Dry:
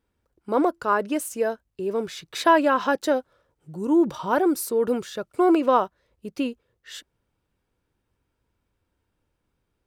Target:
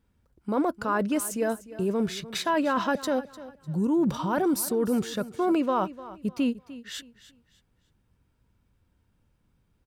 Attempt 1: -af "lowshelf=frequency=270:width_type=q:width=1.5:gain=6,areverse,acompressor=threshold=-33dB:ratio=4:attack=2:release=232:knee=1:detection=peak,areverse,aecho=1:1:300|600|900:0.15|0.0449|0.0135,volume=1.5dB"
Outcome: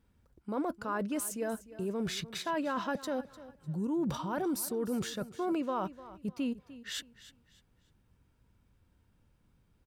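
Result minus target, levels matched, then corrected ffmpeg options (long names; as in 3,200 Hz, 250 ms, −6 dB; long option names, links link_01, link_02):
downward compressor: peak gain reduction +8 dB
-af "lowshelf=frequency=270:width_type=q:width=1.5:gain=6,areverse,acompressor=threshold=-22dB:ratio=4:attack=2:release=232:knee=1:detection=peak,areverse,aecho=1:1:300|600|900:0.15|0.0449|0.0135,volume=1.5dB"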